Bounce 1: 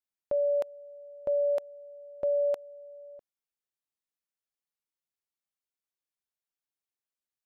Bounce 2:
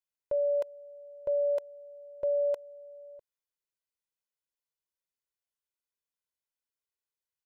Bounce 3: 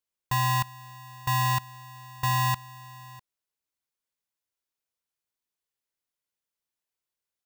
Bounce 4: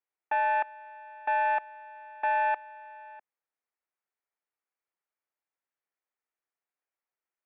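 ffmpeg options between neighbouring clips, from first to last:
-af "aecho=1:1:2:0.65,volume=-4.5dB"
-af "aeval=exprs='val(0)*sgn(sin(2*PI*450*n/s))':c=same,volume=3dB"
-af "highpass=f=540:t=q:w=0.5412,highpass=f=540:t=q:w=1.307,lowpass=f=2.5k:t=q:w=0.5176,lowpass=f=2.5k:t=q:w=0.7071,lowpass=f=2.5k:t=q:w=1.932,afreqshift=-160,volume=1.5dB"

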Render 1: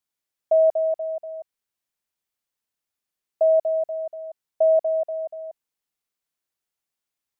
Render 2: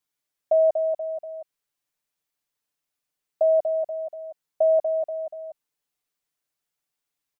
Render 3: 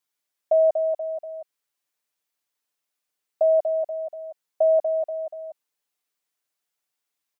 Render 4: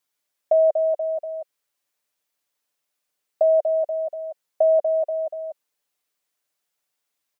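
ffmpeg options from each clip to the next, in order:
-af "aecho=1:1:6.8:0.65"
-af "highpass=f=310:p=1,volume=1.5dB"
-filter_complex "[0:a]equalizer=f=560:t=o:w=0.33:g=3.5,asplit=2[a][b];[b]acompressor=threshold=-24dB:ratio=6,volume=0dB[c];[a][c]amix=inputs=2:normalize=0,volume=-3dB"

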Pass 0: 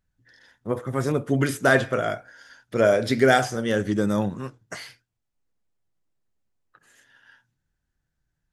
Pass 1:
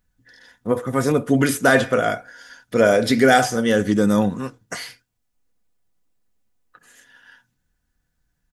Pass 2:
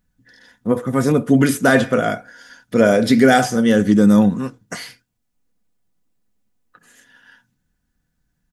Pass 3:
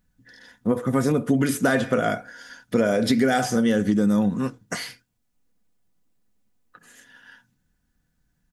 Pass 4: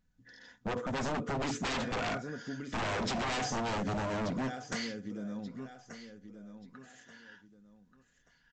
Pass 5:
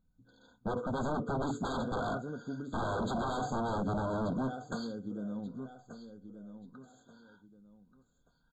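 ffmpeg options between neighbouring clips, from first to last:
-filter_complex "[0:a]highshelf=f=8.2k:g=5.5,aecho=1:1:4.1:0.36,asplit=2[a][b];[b]alimiter=limit=-12.5dB:level=0:latency=1:release=20,volume=1dB[c];[a][c]amix=inputs=2:normalize=0,volume=-1.5dB"
-af "equalizer=f=200:t=o:w=1.2:g=7"
-af "acompressor=threshold=-17dB:ratio=6"
-af "aecho=1:1:1182|2364|3546:0.188|0.0584|0.0181,aresample=16000,aeval=exprs='0.075*(abs(mod(val(0)/0.075+3,4)-2)-1)':c=same,aresample=44100,volume=-6dB"
-filter_complex "[0:a]asplit=2[a][b];[b]adynamicsmooth=sensitivity=4:basefreq=1.2k,volume=0.5dB[c];[a][c]amix=inputs=2:normalize=0,afftfilt=real='re*eq(mod(floor(b*sr/1024/1600),2),0)':imag='im*eq(mod(floor(b*sr/1024/1600),2),0)':win_size=1024:overlap=0.75,volume=-5dB"

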